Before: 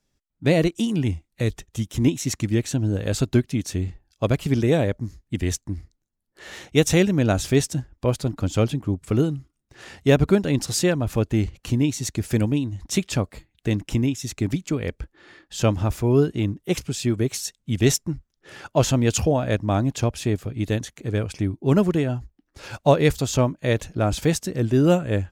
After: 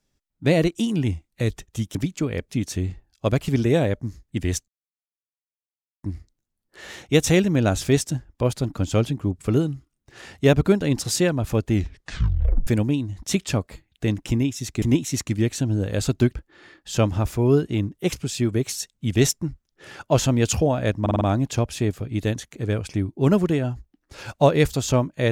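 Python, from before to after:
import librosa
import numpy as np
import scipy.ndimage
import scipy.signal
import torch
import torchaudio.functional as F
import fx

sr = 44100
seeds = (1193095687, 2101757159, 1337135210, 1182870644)

y = fx.edit(x, sr, fx.swap(start_s=1.95, length_s=1.53, other_s=14.45, other_length_s=0.55),
    fx.insert_silence(at_s=5.66, length_s=1.35),
    fx.tape_stop(start_s=11.37, length_s=0.93),
    fx.stutter(start_s=19.66, slice_s=0.05, count=5), tone=tone)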